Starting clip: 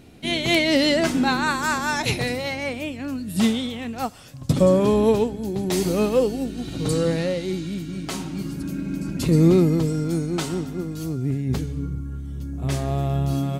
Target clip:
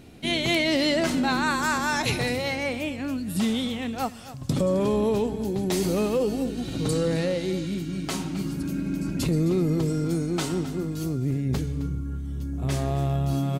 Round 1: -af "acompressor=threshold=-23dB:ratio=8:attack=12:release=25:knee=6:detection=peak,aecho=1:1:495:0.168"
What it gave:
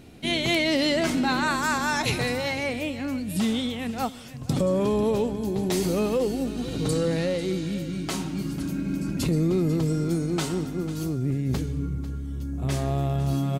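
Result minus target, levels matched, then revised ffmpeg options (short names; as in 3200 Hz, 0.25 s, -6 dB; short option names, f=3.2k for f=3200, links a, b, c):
echo 0.232 s late
-af "acompressor=threshold=-23dB:ratio=8:attack=12:release=25:knee=6:detection=peak,aecho=1:1:263:0.168"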